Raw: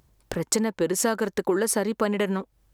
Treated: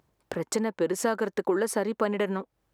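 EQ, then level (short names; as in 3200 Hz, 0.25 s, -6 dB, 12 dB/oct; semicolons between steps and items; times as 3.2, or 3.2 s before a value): HPF 270 Hz 6 dB/oct; high shelf 3000 Hz -10 dB; 0.0 dB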